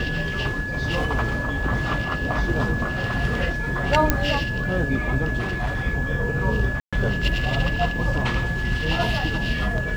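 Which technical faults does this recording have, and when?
whistle 1,700 Hz −28 dBFS
0:04.10: click −3 dBFS
0:05.40–0:05.86: clipping −21 dBFS
0:06.80–0:06.93: drop-out 126 ms

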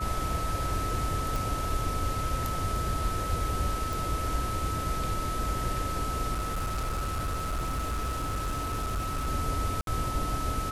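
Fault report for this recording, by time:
whistle 1,300 Hz −33 dBFS
0:01.36: click
0:03.93: click
0:06.33–0:09.28: clipping −27 dBFS
0:09.81–0:09.87: drop-out 62 ms

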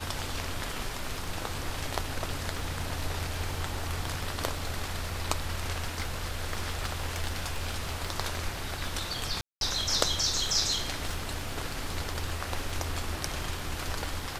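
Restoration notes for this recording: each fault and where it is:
surface crackle 13 per second
0:05.83–0:08.06: clipping −25 dBFS
0:09.41–0:09.61: drop-out 202 ms

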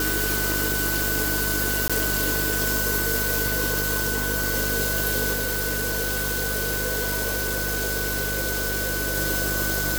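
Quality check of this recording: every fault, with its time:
mains buzz 50 Hz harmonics 14 −30 dBFS
whistle 1,500 Hz −28 dBFS
0:01.88–0:01.90: drop-out 16 ms
0:05.33–0:09.16: clipping −21.5 dBFS

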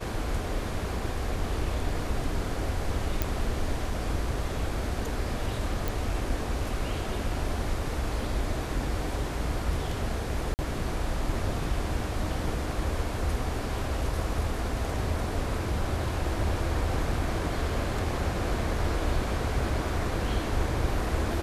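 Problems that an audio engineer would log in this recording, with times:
0:03.22: click
0:05.88: click
0:10.54–0:10.59: drop-out 49 ms

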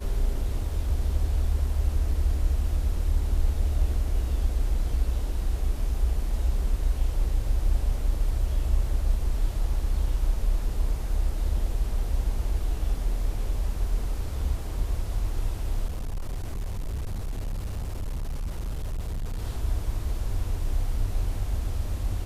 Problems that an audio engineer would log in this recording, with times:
0:15.86–0:19.44: clipping −27 dBFS

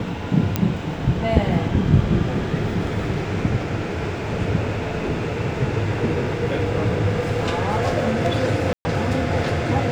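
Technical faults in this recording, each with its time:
0:00.56: click −5 dBFS
0:08.73–0:08.85: drop-out 120 ms

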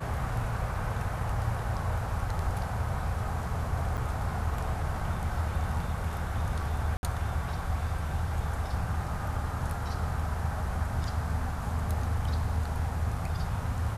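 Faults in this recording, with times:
0:03.97–0:03.98: drop-out 7.5 ms
0:06.97–0:07.03: drop-out 61 ms

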